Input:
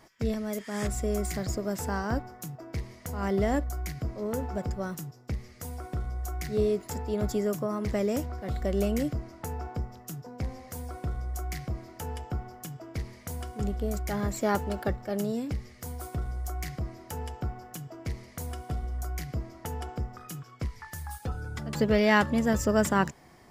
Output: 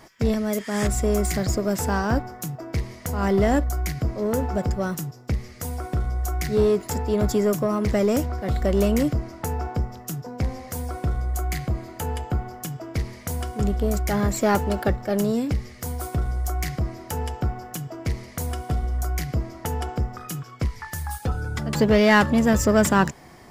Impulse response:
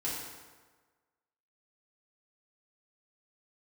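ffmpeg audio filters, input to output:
-filter_complex "[0:a]asettb=1/sr,asplit=3[link_01][link_02][link_03];[link_01]atrim=end=11.184[link_04];[link_02]atrim=start=11.18:end=12.51,asetpts=PTS-STARTPTS,afade=type=in:duration=0.004:curve=qsin,afade=type=out:start_time=1.326:duration=0.004:curve=qsin,bandreject=frequency=5500:width=7.4[link_05];[link_03]atrim=start=12.506[link_06];[link_04][link_05]acrossfade=duration=0.004:curve1=hsin:curve2=qsin[link_07];[link_07][link_06]acrossfade=duration=0.004:curve1=qsin:curve2=hsin,asplit=2[link_08][link_09];[link_09]asoftclip=type=hard:threshold=-26dB,volume=-3dB[link_10];[link_08][link_10]amix=inputs=2:normalize=0,volume=3.5dB"

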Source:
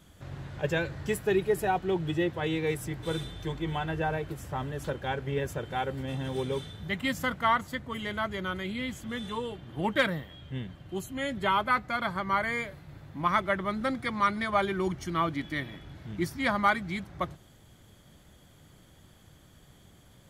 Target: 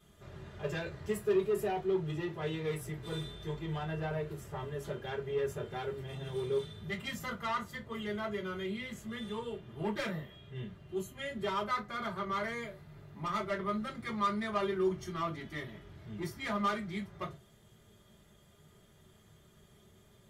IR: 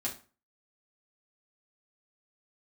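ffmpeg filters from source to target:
-filter_complex "[0:a]asoftclip=type=tanh:threshold=-25dB[link_01];[1:a]atrim=start_sample=2205,atrim=end_sample=6174,asetrate=74970,aresample=44100[link_02];[link_01][link_02]afir=irnorm=-1:irlink=0,volume=-3dB"

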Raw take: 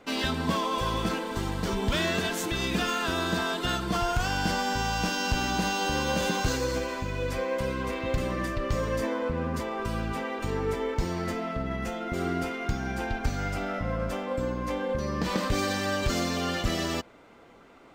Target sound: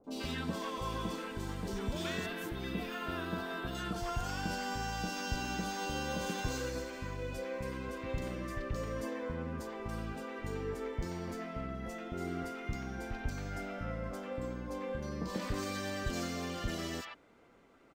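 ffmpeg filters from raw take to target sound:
ffmpeg -i in.wav -filter_complex "[0:a]asettb=1/sr,asplit=3[link_01][link_02][link_03];[link_01]atrim=end=2.224[link_04];[link_02]atrim=start=2.22:end=3.71,asetpts=PTS-STARTPTS,afade=type=in:duration=0.004:curve=qsin,afade=type=out:start_time=1.486:duration=0.004:curve=qsin,equalizer=frequency=6900:width_type=o:width=1.1:gain=-13[link_05];[link_03]atrim=start=3.706[link_06];[link_04][link_05]acrossfade=duration=0.004:curve1=hsin:curve2=qsin[link_07];[link_07][link_06]acrossfade=duration=0.004:curve1=qsin:curve2=hsin,acrossover=split=880|3400[link_08][link_09][link_10];[link_10]adelay=40[link_11];[link_09]adelay=130[link_12];[link_08][link_12][link_11]amix=inputs=3:normalize=0,volume=-8.5dB" out.wav

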